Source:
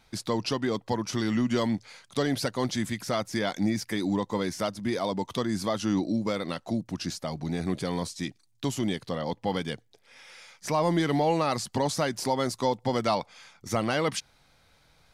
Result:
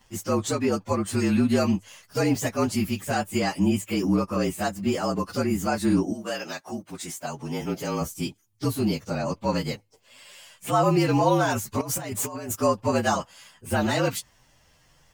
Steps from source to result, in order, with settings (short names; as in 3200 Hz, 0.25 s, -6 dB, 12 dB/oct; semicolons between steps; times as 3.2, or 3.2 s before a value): inharmonic rescaling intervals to 113%; 6.12–8 HPF 950 Hz -> 250 Hz 6 dB/oct; 11.81–12.56 negative-ratio compressor -38 dBFS, ratio -1; gain +6 dB